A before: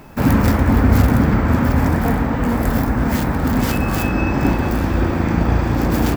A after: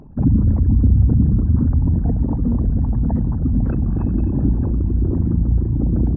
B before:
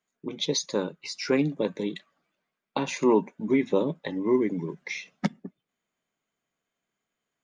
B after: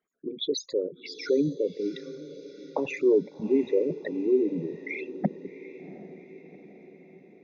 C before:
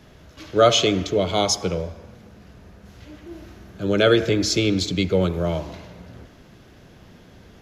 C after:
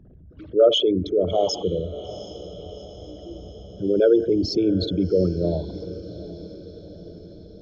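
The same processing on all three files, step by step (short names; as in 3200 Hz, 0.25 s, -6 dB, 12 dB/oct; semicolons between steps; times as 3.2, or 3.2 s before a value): formant sharpening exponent 3; Gaussian blur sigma 1.6 samples; on a send: diffused feedback echo 0.747 s, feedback 57%, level -15.5 dB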